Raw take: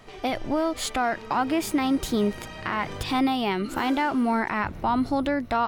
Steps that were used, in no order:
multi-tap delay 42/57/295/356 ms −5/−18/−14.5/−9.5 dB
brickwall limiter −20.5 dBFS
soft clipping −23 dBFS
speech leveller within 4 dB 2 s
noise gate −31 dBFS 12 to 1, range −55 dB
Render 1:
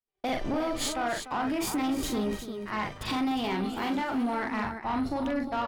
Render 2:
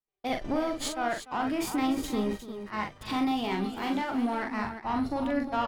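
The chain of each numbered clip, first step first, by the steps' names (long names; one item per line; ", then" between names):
brickwall limiter, then speech leveller, then noise gate, then multi-tap delay, then soft clipping
brickwall limiter, then soft clipping, then noise gate, then multi-tap delay, then speech leveller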